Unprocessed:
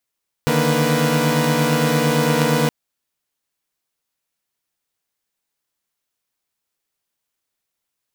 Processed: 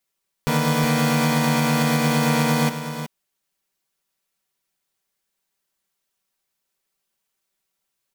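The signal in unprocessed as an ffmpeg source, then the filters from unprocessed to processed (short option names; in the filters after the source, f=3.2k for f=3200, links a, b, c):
-f lavfi -i "aevalsrc='0.119*((2*mod(146.83*t,1)-1)+(2*mod(155.56*t,1)-1)+(2*mod(233.08*t,1)-1)+(2*mod(493.88*t,1)-1))':d=2.22:s=44100"
-filter_complex "[0:a]aecho=1:1:5.2:0.54,alimiter=limit=-11dB:level=0:latency=1:release=181,asplit=2[a][b];[b]aecho=0:1:369:0.335[c];[a][c]amix=inputs=2:normalize=0"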